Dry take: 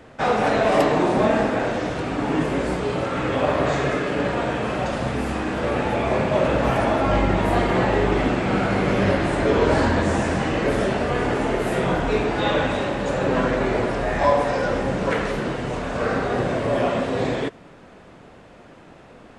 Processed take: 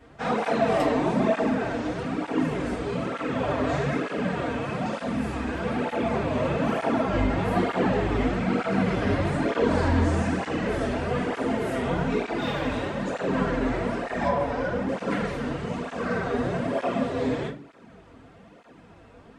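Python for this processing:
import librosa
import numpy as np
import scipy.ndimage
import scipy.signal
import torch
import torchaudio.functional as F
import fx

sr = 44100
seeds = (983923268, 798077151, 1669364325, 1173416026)

y = fx.overload_stage(x, sr, gain_db=16.5, at=(12.37, 13.01))
y = fx.high_shelf(y, sr, hz=4300.0, db=-9.5, at=(14.28, 14.89))
y = fx.room_shoebox(y, sr, seeds[0], volume_m3=210.0, walls='furnished', distance_m=1.7)
y = fx.add_hum(y, sr, base_hz=50, snr_db=34)
y = fx.flanger_cancel(y, sr, hz=1.1, depth_ms=6.1)
y = y * 10.0 ** (-6.0 / 20.0)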